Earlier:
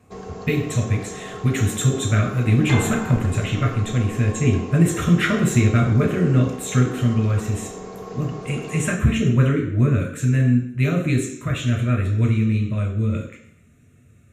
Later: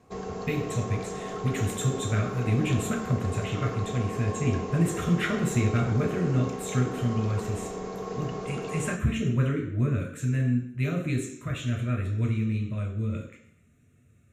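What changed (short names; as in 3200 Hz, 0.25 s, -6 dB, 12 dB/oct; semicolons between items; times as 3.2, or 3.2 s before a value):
speech -8.0 dB; second sound: muted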